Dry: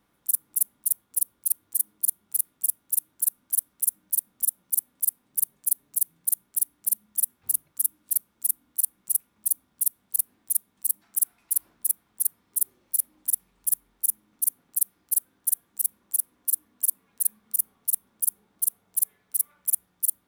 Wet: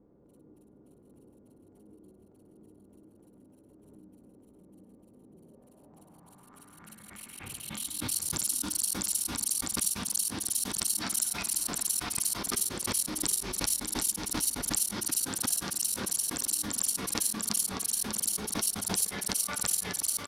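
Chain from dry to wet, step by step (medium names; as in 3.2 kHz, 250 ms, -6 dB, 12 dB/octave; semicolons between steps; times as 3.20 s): multi-tap echo 59/424/592/734/759 ms -7/-19/-8/-12/-3.5 dB; low-pass sweep 430 Hz -> 5.1 kHz, 5.37–8.24 s; swell ahead of each attack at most 36 dB/s; trim +7 dB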